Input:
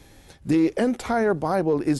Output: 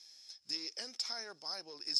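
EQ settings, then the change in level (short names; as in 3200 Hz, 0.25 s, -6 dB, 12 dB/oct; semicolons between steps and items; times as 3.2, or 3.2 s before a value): band-pass 5200 Hz, Q 19; +16.5 dB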